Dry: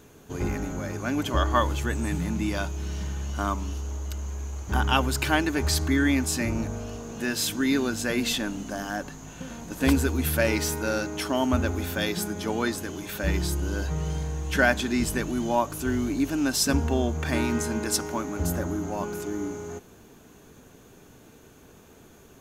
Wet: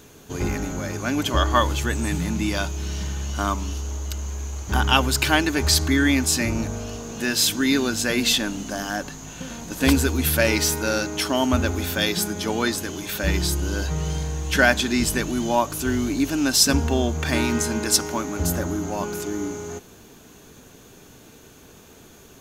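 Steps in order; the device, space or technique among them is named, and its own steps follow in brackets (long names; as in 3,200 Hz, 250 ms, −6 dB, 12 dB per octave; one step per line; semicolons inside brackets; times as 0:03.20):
presence and air boost (parametric band 4,400 Hz +5.5 dB 1.8 octaves; high-shelf EQ 12,000 Hz +5.5 dB)
level +3 dB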